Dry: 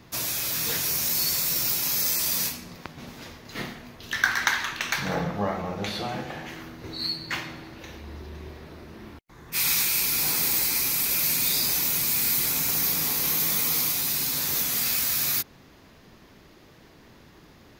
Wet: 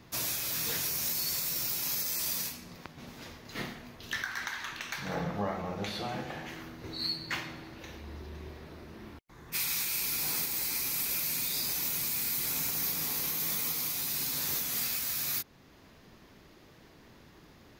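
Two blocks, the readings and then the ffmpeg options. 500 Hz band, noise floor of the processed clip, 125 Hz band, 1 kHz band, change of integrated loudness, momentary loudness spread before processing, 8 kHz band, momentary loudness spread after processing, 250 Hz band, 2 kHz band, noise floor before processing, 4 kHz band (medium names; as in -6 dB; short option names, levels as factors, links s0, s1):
-6.0 dB, -57 dBFS, -6.0 dB, -7.0 dB, -8.0 dB, 20 LU, -7.5 dB, 17 LU, -6.0 dB, -9.0 dB, -53 dBFS, -7.0 dB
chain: -af "alimiter=limit=0.133:level=0:latency=1:release=450,volume=0.631"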